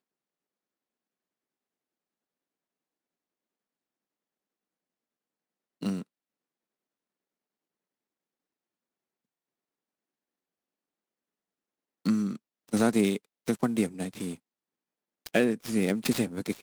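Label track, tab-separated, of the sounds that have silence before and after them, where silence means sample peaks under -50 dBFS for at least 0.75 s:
5.810000	6.030000	sound
12.050000	14.370000	sound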